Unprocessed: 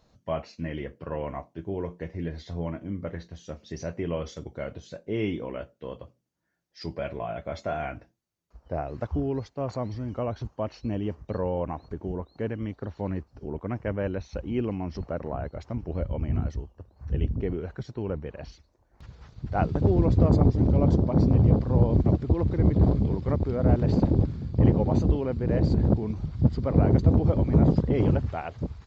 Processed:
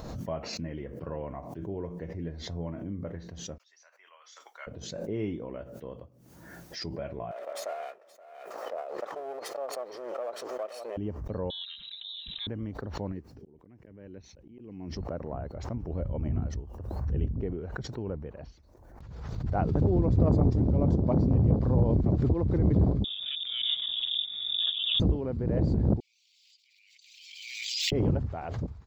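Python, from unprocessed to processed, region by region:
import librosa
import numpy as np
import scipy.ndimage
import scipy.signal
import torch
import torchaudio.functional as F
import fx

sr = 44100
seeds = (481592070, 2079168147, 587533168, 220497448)

y = fx.chain(x, sr, fx.highpass(hz=1100.0, slope=24),
    fx.upward_expand(threshold_db=-56.0, expansion=2.5), at=(3.58, 4.67))
y = fx.chain(y, sr, fx.lower_of_two(delay_ms=1.6),
    fx.highpass(hz=420.0, slope=24),
    fx.echo_single(ms=523, db=-22.0), at=(7.31, 10.97))
y = fx.chain(y, sr, fx.comb(ms=4.4, depth=0.66),
    fx.freq_invert(carrier_hz=3900), at=(11.5, 12.47))
y = fx.chain(y, sr, fx.highpass(hz=170.0, slope=6),
    fx.band_shelf(hz=870.0, db=-8.5, octaves=1.7),
    fx.auto_swell(attack_ms=633.0), at=(13.12, 14.96))
y = fx.chain(y, sr, fx.freq_invert(carrier_hz=3600),
    fx.notch(hz=410.0, q=8.0), at=(23.04, 25.0))
y = fx.chain(y, sr, fx.steep_highpass(hz=2400.0, slope=72),
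    fx.pre_swell(db_per_s=25.0), at=(26.0, 27.92))
y = fx.peak_eq(y, sr, hz=3400.0, db=-8.0, octaves=2.6)
y = fx.pre_swell(y, sr, db_per_s=36.0)
y = y * 10.0 ** (-4.0 / 20.0)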